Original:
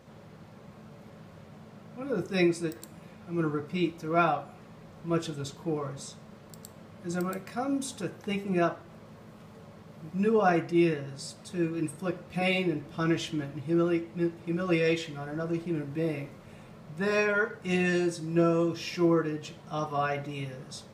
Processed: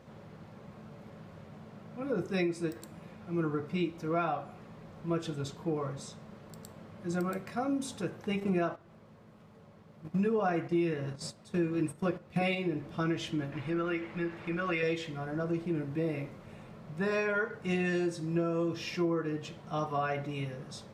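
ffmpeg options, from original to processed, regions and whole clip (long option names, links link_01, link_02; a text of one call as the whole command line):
ffmpeg -i in.wav -filter_complex "[0:a]asettb=1/sr,asplit=3[link_01][link_02][link_03];[link_01]atrim=end=8.404[link_04];[link_02]atrim=start=8.4:end=12.55,asetpts=PTS-STARTPTS,afade=type=in:duration=0.004:curve=qsin,afade=type=out:start_time=4.146:duration=0.004:curve=qsin,agate=range=-12dB:threshold=-41dB:ratio=16:release=100:detection=peak,acontrast=33[link_05];[link_03]atrim=start=12.546[link_06];[link_04][link_05]acrossfade=duration=0.004:curve1=hsin:curve2=qsin[link_07];[link_07][link_06]acrossfade=duration=0.004:curve1=qsin:curve2=hsin,asettb=1/sr,asplit=3[link_08][link_09][link_10];[link_08]atrim=end=13.524[link_11];[link_09]atrim=start=13.52:end=14.83,asetpts=PTS-STARTPTS,afade=type=in:duration=0.004:curve=qsin,afade=type=out:start_time=1.306:duration=0.004:curve=qsin,equalizer=frequency=1900:width=0.54:gain=13,acompressor=threshold=-31dB:ratio=2:attack=3.2:release=140:knee=1:detection=peak,tremolo=f=140:d=0.261[link_12];[link_10]atrim=start=14.826[link_13];[link_11][link_12]acrossfade=duration=0.004:curve1=hsin:curve2=qsin[link_14];[link_14][link_13]acrossfade=duration=0.004:curve1=qsin:curve2=hsin,highshelf=frequency=4400:gain=-6.5,acompressor=threshold=-27dB:ratio=6" out.wav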